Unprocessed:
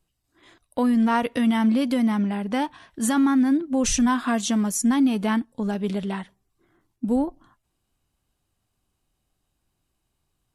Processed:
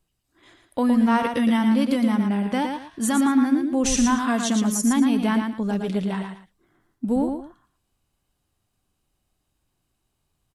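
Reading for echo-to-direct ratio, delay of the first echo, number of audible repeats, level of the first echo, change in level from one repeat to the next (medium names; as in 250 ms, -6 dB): -5.0 dB, 114 ms, 2, -5.5 dB, -12.0 dB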